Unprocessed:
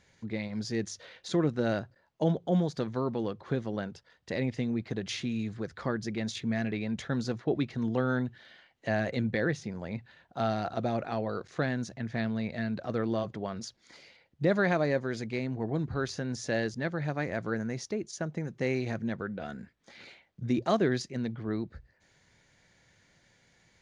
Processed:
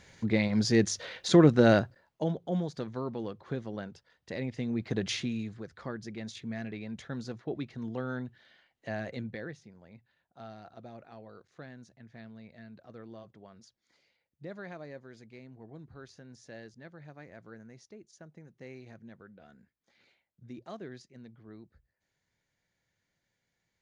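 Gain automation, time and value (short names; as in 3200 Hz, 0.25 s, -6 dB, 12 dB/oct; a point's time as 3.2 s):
1.78 s +8 dB
2.29 s -4.5 dB
4.52 s -4.5 dB
5.03 s +4 dB
5.65 s -7 dB
9.15 s -7 dB
9.75 s -17 dB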